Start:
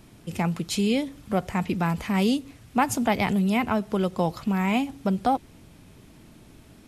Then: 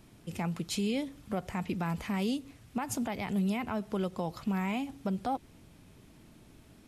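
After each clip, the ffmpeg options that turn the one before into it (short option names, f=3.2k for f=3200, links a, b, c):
-af "alimiter=limit=-17dB:level=0:latency=1:release=110,volume=-6dB"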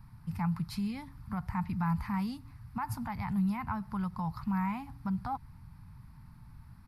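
-af "firequalizer=gain_entry='entry(130,0);entry(350,-29);entry(570,-29);entry(900,-3);entry(1300,-7);entry(2000,-12);entry(3100,-25);entry(4600,-12);entry(6700,-28);entry(11000,-13)':delay=0.05:min_phase=1,volume=8.5dB"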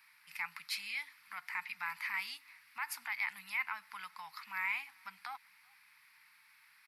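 -filter_complex "[0:a]highpass=f=2.2k:t=q:w=3,asplit=2[a][b];[b]adelay=384.8,volume=-28dB,highshelf=f=4k:g=-8.66[c];[a][c]amix=inputs=2:normalize=0,volume=4.5dB"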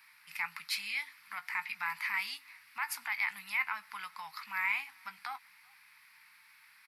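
-filter_complex "[0:a]asplit=2[a][b];[b]adelay=19,volume=-12.5dB[c];[a][c]amix=inputs=2:normalize=0,volume=3.5dB"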